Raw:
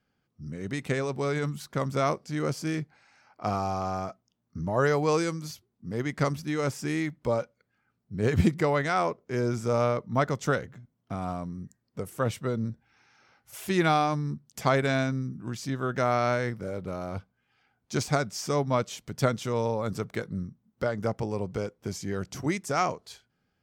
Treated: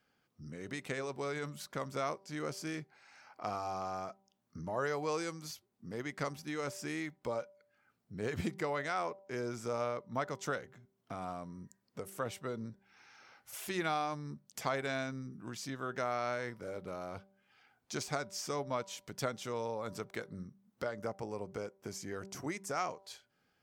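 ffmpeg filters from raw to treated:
ffmpeg -i in.wav -filter_complex "[0:a]asettb=1/sr,asplit=3[link_01][link_02][link_03];[link_01]atrim=end=20.974[link_04];[link_02]atrim=start=20.97:end=22.8,asetpts=PTS-STARTPTS,afade=type=in:duration=0.004:curve=qsin,afade=type=out:start_time=1.826:duration=0.004:curve=qsin,equalizer=frequency=3500:width=1.5:gain=-5[link_05];[link_03]atrim=start=22.796[link_06];[link_04][link_05]acrossfade=duration=0.004:curve1=hsin:curve2=qsin[link_07];[link_07][link_06]acrossfade=duration=0.004:curve1=qsin:curve2=hsin,lowshelf=frequency=220:gain=-12,bandreject=frequency=194.7:width_type=h:width=4,bandreject=frequency=389.4:width_type=h:width=4,bandreject=frequency=584.1:width_type=h:width=4,bandreject=frequency=778.8:width_type=h:width=4,bandreject=frequency=973.5:width_type=h:width=4,acompressor=threshold=-56dB:ratio=1.5,volume=3dB" out.wav

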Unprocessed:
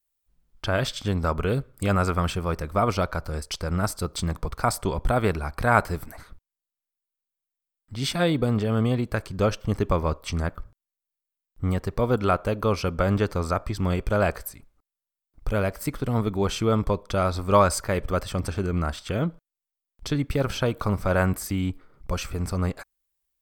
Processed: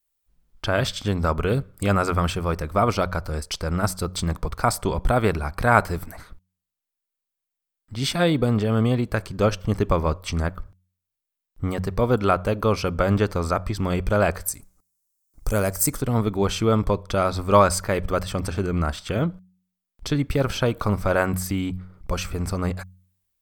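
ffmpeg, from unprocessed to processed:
ffmpeg -i in.wav -filter_complex "[0:a]asettb=1/sr,asplit=3[link_01][link_02][link_03];[link_01]atrim=end=14.484[link_04];[link_02]atrim=start=14.48:end=16.02,asetpts=PTS-STARTPTS,afade=type=in:duration=0.004:curve=qsin,afade=type=out:start_time=1.536:duration=0.004:curve=qsin,highshelf=frequency=4800:width_type=q:width=1.5:gain=12[link_05];[link_03]atrim=start=16.016[link_06];[link_04][link_05]acrossfade=duration=0.004:curve1=hsin:curve2=qsin[link_07];[link_07][link_06]acrossfade=duration=0.004:curve1=qsin:curve2=hsin,bandreject=frequency=91.98:width_type=h:width=4,bandreject=frequency=183.96:width_type=h:width=4,volume=2.5dB" out.wav

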